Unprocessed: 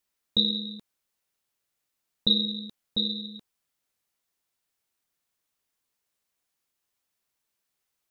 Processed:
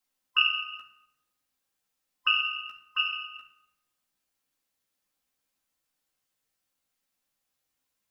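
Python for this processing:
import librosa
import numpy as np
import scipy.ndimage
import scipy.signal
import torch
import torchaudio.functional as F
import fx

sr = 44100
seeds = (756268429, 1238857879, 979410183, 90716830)

y = fx.band_swap(x, sr, width_hz=1000)
y = fx.doubler(y, sr, ms=15.0, db=-4.0)
y = fx.room_shoebox(y, sr, seeds[0], volume_m3=3100.0, walls='furnished', distance_m=2.1)
y = F.gain(torch.from_numpy(y), -3.0).numpy()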